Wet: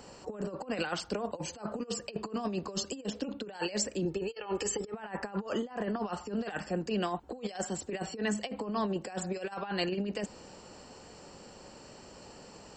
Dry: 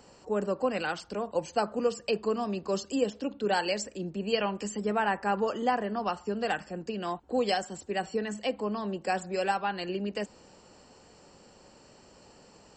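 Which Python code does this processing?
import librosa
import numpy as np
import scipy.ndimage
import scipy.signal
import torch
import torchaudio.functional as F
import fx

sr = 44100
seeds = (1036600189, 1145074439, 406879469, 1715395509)

y = fx.comb(x, sr, ms=2.3, depth=0.81, at=(4.05, 4.94))
y = fx.over_compress(y, sr, threshold_db=-34.0, ratio=-0.5)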